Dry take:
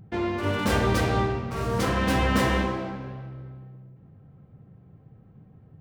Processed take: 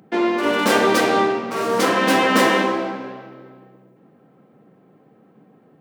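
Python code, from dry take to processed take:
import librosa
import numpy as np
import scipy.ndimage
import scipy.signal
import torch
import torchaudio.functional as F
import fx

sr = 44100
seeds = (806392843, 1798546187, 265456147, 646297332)

y = scipy.signal.sosfilt(scipy.signal.butter(4, 240.0, 'highpass', fs=sr, output='sos'), x)
y = y * 10.0 ** (9.0 / 20.0)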